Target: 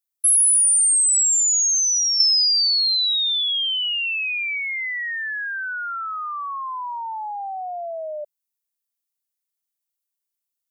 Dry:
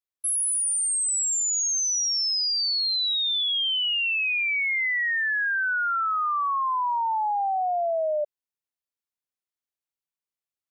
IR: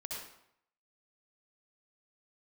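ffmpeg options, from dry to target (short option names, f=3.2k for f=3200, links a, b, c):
-filter_complex "[0:a]asettb=1/sr,asplit=3[a][b][c];[a]atrim=end=2.204[d];[b]atrim=start=2.2:end=4.58,asetpts=PTS-STARTPTS,afade=t=in:d=0.004:c=qsin,afade=t=out:st=2.376:d=0.004:c=qsin,equalizer=f=5.7k:t=o:w=0.62:g=14.5[e];[c]atrim=start=4.576[f];[d][e]acrossfade=d=0.004:c1=hsin:c2=qsin[g];[g][f]acrossfade=d=0.004:c1=qsin:c2=hsin,acompressor=threshold=-21dB:ratio=5,crystalizer=i=3.5:c=0,volume=-5dB"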